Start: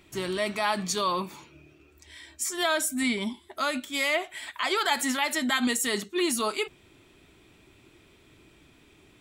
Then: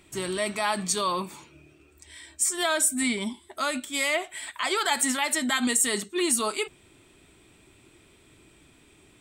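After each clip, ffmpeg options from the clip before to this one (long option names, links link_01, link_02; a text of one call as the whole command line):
ffmpeg -i in.wav -af "equalizer=frequency=8400:width=4.1:gain=12.5" out.wav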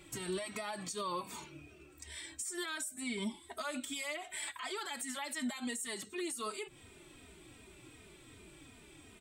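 ffmpeg -i in.wav -filter_complex "[0:a]acompressor=threshold=-30dB:ratio=6,alimiter=level_in=6dB:limit=-24dB:level=0:latency=1:release=192,volume=-6dB,asplit=2[link_01][link_02];[link_02]adelay=3,afreqshift=-2.7[link_03];[link_01][link_03]amix=inputs=2:normalize=1,volume=3dB" out.wav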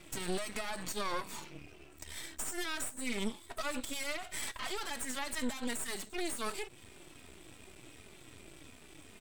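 ffmpeg -i in.wav -af "aeval=exprs='max(val(0),0)':channel_layout=same,volume=6dB" out.wav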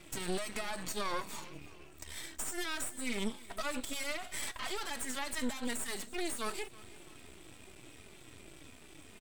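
ffmpeg -i in.wav -af "aecho=1:1:326|652|978:0.0944|0.0415|0.0183" out.wav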